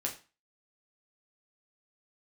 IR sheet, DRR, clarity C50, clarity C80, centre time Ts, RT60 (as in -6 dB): -1.0 dB, 11.5 dB, 16.0 dB, 16 ms, 0.35 s